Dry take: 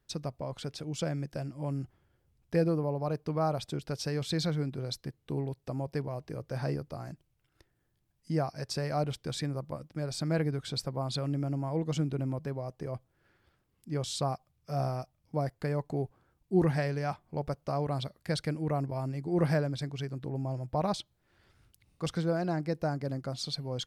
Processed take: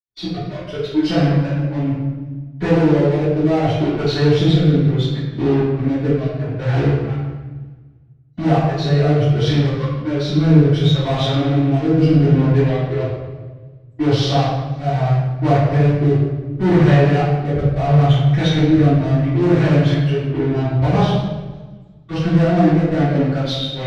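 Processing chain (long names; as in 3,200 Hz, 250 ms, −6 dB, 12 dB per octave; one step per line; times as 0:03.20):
hearing-aid frequency compression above 2,600 Hz 1.5 to 1
noise reduction from a noise print of the clip's start 20 dB
0:17.43–0:17.90: parametric band 160 Hz +11 dB 0.82 octaves
in parallel at −9 dB: fuzz pedal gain 42 dB, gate −46 dBFS
on the sum: rotating-speaker cabinet horn 0.7 Hz, later 6.3 Hz, at 0:19.83
convolution reverb RT60 1.2 s, pre-delay 77 ms
feedback echo with a swinging delay time 166 ms, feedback 49%, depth 143 cents, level −19.5 dB
level −6.5 dB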